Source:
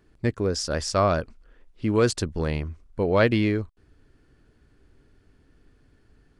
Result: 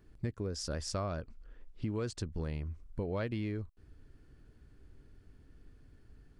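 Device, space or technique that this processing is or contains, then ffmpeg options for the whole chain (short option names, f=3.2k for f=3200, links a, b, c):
ASMR close-microphone chain: -filter_complex "[0:a]asettb=1/sr,asplit=3[a][b][c];[a]atrim=end=1.134[d];[b]atrim=start=1.13:end=2.33,asetpts=PTS-STARTPTS,afade=t=in:d=0.004:c=qsin,afade=t=out:st=1.196:d=0.004:c=qsin,lowpass=8.7k[e];[c]atrim=start=2.326[f];[d][e]acrossfade=d=0.004:c1=hsin:c2=qsin[g];[g][f]acrossfade=d=0.004:c1=qsin:c2=hsin,lowshelf=f=200:g=8,acompressor=threshold=-29dB:ratio=4,highshelf=f=9.1k:g=4,volume=-5.5dB"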